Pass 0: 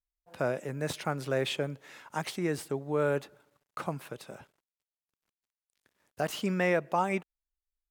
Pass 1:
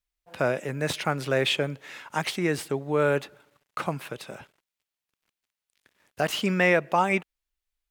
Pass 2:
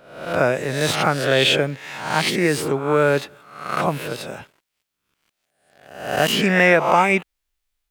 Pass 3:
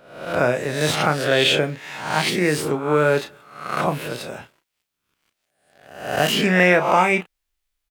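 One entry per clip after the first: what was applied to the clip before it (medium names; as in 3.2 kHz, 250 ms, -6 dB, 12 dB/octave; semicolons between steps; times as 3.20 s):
peaking EQ 2.6 kHz +5.5 dB 1.6 oct; trim +4.5 dB
reverse spectral sustain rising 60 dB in 0.69 s; trim +5.5 dB
doubling 33 ms -9.5 dB; trim -1 dB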